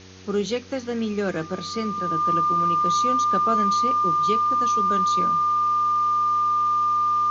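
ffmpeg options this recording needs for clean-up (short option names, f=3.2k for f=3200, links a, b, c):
-af "bandreject=f=93.4:t=h:w=4,bandreject=f=186.8:t=h:w=4,bandreject=f=280.2:t=h:w=4,bandreject=f=373.6:t=h:w=4,bandreject=f=467:t=h:w=4,bandreject=f=1.2k:w=30,afwtdn=0.0056"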